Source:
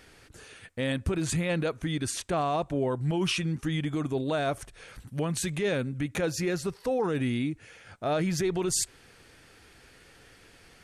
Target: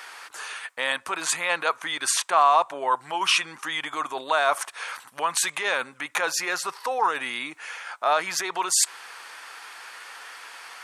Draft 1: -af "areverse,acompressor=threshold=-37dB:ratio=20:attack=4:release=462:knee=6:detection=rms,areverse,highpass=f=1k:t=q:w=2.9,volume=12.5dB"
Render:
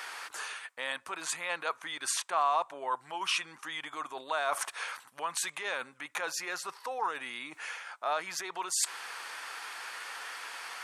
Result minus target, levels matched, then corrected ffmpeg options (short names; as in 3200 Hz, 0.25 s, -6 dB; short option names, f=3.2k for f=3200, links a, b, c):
compressor: peak gain reduction +10 dB
-af "areverse,acompressor=threshold=-26.5dB:ratio=20:attack=4:release=462:knee=6:detection=rms,areverse,highpass=f=1k:t=q:w=2.9,volume=12.5dB"